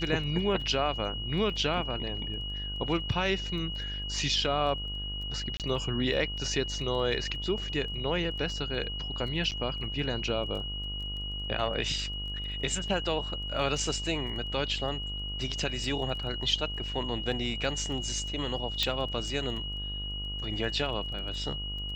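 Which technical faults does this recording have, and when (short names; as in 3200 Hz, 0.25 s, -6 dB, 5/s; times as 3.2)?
buzz 50 Hz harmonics 29 -38 dBFS
crackle 11/s -39 dBFS
tone 2900 Hz -36 dBFS
5.57–5.6 gap 28 ms
9.51–9.52 gap 8 ms
18.83 pop -12 dBFS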